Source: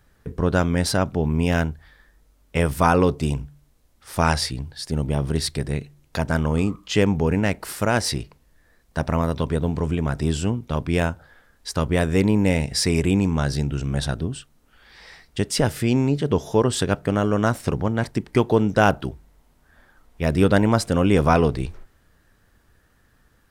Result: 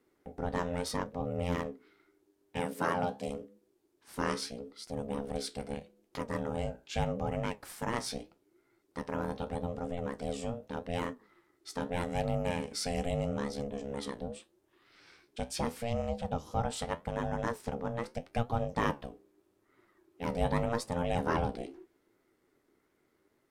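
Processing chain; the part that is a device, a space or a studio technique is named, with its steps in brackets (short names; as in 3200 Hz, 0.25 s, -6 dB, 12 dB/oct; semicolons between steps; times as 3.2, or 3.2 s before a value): alien voice (ring modulator 350 Hz; flange 0.81 Hz, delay 7.3 ms, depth 9.2 ms, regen +65%); 2.6–3.28 HPF 120 Hz 24 dB/oct; gain -6.5 dB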